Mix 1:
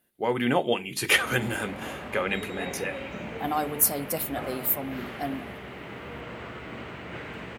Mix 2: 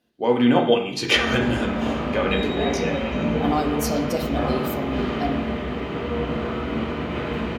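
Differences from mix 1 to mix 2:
speech: add high shelf with overshoot 8,000 Hz −12.5 dB, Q 1.5
reverb: on, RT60 0.70 s

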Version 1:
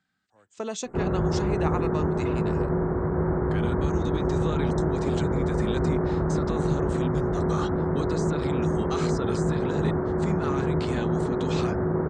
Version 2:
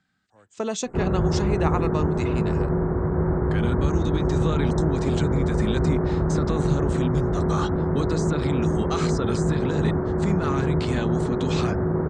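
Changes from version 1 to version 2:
speech +4.0 dB
master: add low-shelf EQ 160 Hz +5.5 dB

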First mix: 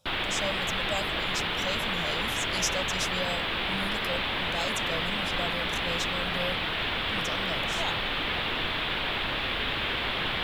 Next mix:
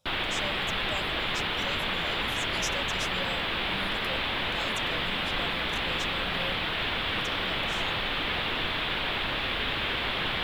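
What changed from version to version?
speech −5.5 dB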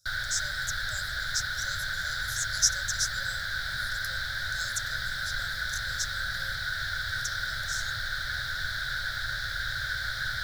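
master: add drawn EQ curve 120 Hz 0 dB, 200 Hz −20 dB, 400 Hz −29 dB, 570 Hz −14 dB, 1,100 Hz −24 dB, 1,500 Hz +10 dB, 2,700 Hz −30 dB, 3,900 Hz +2 dB, 5,600 Hz +14 dB, 8,300 Hz +8 dB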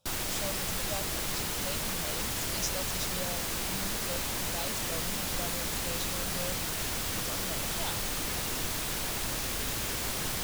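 background: remove drawn EQ curve 120 Hz 0 dB, 3,500 Hz +11 dB, 6,100 Hz −24 dB
master: remove drawn EQ curve 120 Hz 0 dB, 200 Hz −20 dB, 400 Hz −29 dB, 570 Hz −14 dB, 1,100 Hz −24 dB, 1,500 Hz +10 dB, 2,700 Hz −30 dB, 3,900 Hz +2 dB, 5,600 Hz +14 dB, 8,300 Hz +8 dB

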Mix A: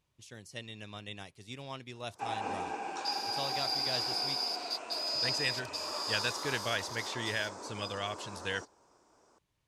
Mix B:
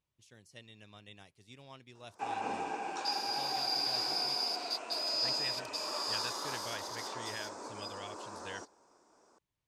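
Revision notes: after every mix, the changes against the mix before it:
speech −9.5 dB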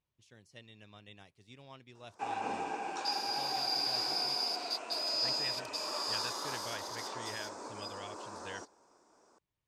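speech: add high-shelf EQ 8,200 Hz −11 dB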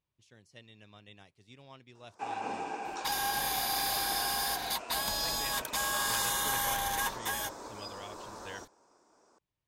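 second sound: remove four-pole ladder band-pass 5,000 Hz, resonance 85%

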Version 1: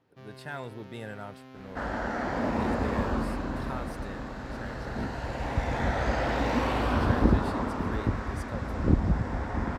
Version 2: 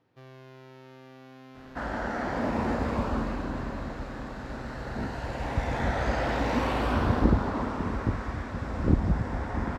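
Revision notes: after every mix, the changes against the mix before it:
speech: muted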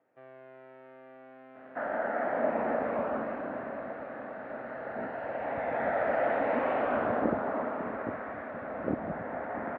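master: add loudspeaker in its box 330–2,100 Hz, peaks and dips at 360 Hz −4 dB, 630 Hz +8 dB, 1,000 Hz −6 dB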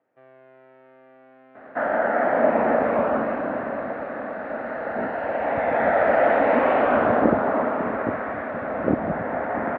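second sound +10.0 dB

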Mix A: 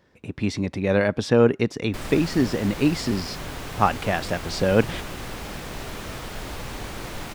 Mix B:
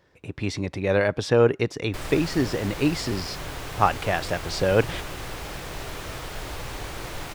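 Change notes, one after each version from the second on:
master: add parametric band 220 Hz −9 dB 0.5 octaves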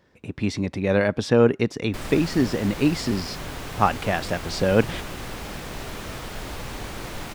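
master: add parametric band 220 Hz +9 dB 0.5 octaves

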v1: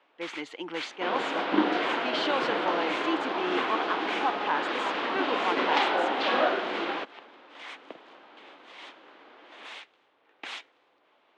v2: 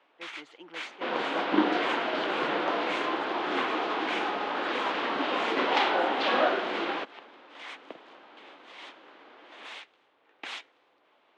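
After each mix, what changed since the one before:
speech −11.5 dB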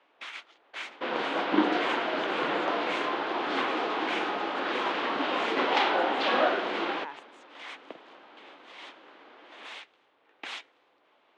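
speech: entry +1.35 s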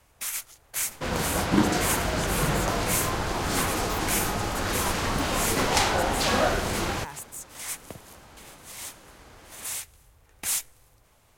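master: remove elliptic band-pass filter 290–3,400 Hz, stop band 80 dB

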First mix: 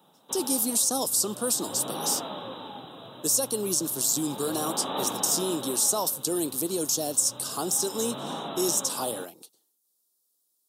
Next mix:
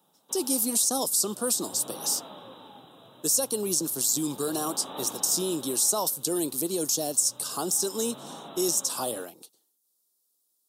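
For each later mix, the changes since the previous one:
background −8.0 dB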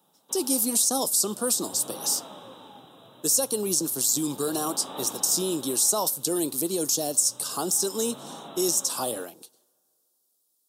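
reverb: on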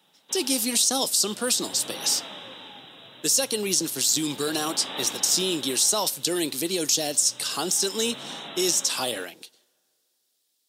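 master: remove drawn EQ curve 1,200 Hz 0 dB, 2,000 Hz −17 dB, 11,000 Hz +4 dB

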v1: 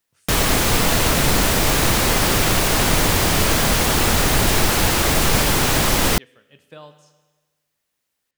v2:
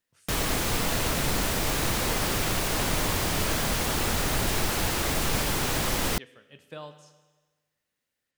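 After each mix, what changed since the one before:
background −9.5 dB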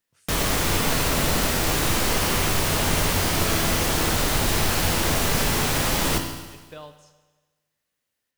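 background: send on

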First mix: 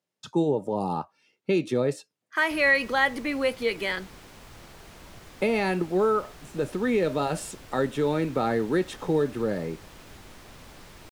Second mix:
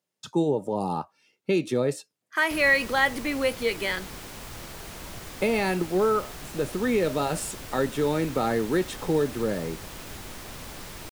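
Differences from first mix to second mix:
background +6.5 dB
master: add high-shelf EQ 7,400 Hz +8 dB

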